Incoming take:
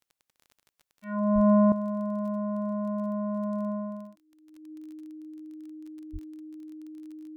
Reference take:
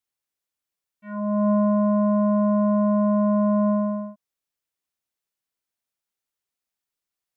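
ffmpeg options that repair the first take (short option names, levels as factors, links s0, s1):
-filter_complex "[0:a]adeclick=t=4,bandreject=f=310:w=30,asplit=3[s0][s1][s2];[s0]afade=t=out:st=1.34:d=0.02[s3];[s1]highpass=f=140:w=0.5412,highpass=f=140:w=1.3066,afade=t=in:st=1.34:d=0.02,afade=t=out:st=1.46:d=0.02[s4];[s2]afade=t=in:st=1.46:d=0.02[s5];[s3][s4][s5]amix=inputs=3:normalize=0,asplit=3[s6][s7][s8];[s6]afade=t=out:st=6.12:d=0.02[s9];[s7]highpass=f=140:w=0.5412,highpass=f=140:w=1.3066,afade=t=in:st=6.12:d=0.02,afade=t=out:st=6.24:d=0.02[s10];[s8]afade=t=in:st=6.24:d=0.02[s11];[s9][s10][s11]amix=inputs=3:normalize=0,asetnsamples=n=441:p=0,asendcmd='1.72 volume volume 10.5dB',volume=1"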